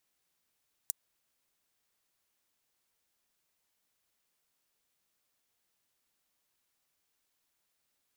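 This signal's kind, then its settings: closed hi-hat, high-pass 7.3 kHz, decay 0.02 s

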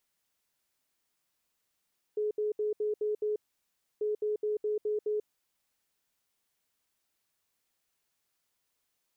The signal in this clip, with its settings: beep pattern sine 423 Hz, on 0.14 s, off 0.07 s, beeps 6, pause 0.65 s, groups 2, -27.5 dBFS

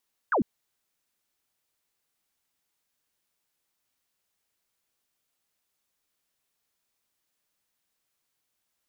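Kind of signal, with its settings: laser zap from 1.7 kHz, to 180 Hz, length 0.10 s sine, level -20.5 dB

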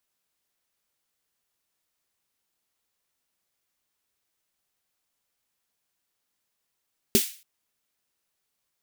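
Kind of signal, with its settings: snare drum length 0.28 s, tones 230 Hz, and 390 Hz, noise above 2.2 kHz, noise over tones -3 dB, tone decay 0.09 s, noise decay 0.39 s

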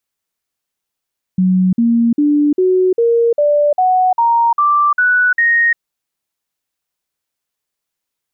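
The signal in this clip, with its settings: stepped sine 185 Hz up, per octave 3, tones 11, 0.35 s, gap 0.05 s -9 dBFS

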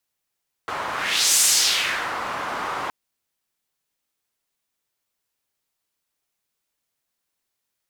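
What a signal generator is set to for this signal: whoosh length 2.22 s, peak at 0.71 s, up 0.51 s, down 0.82 s, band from 1.1 kHz, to 7.7 kHz, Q 1.7, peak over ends 12 dB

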